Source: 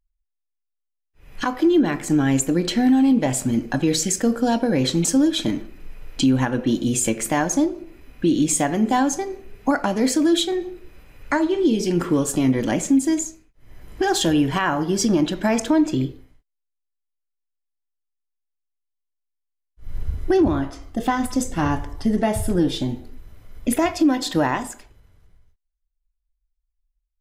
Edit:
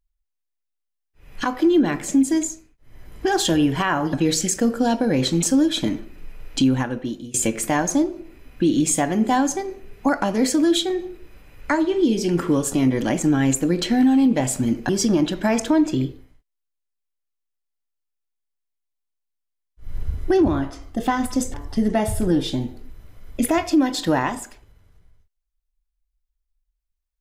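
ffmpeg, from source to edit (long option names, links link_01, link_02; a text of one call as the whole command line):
ffmpeg -i in.wav -filter_complex "[0:a]asplit=7[link_01][link_02][link_03][link_04][link_05][link_06][link_07];[link_01]atrim=end=2.082[link_08];[link_02]atrim=start=12.838:end=14.892[link_09];[link_03]atrim=start=3.748:end=6.96,asetpts=PTS-STARTPTS,afade=type=out:start_time=2.512:duration=0.7:silence=0.0841395[link_10];[link_04]atrim=start=6.96:end=12.842,asetpts=PTS-STARTPTS,afade=type=in:duration=0.004:curve=hsin:silence=0.0841395[link_11];[link_05]atrim=start=2.078:end=3.752[link_12];[link_06]atrim=start=14.888:end=21.542[link_13];[link_07]atrim=start=21.818[link_14];[link_08][link_09]acrossfade=duration=0.004:curve1=hsin:curve2=hsin[link_15];[link_10][link_11]concat=n=2:v=0:a=1[link_16];[link_15][link_16]acrossfade=duration=0.004:curve1=hsin:curve2=hsin[link_17];[link_17][link_12]acrossfade=duration=0.004:curve1=hsin:curve2=hsin[link_18];[link_18][link_13]acrossfade=duration=0.004:curve1=hsin:curve2=hsin[link_19];[link_19][link_14]acrossfade=duration=0.004:curve1=hsin:curve2=hsin" out.wav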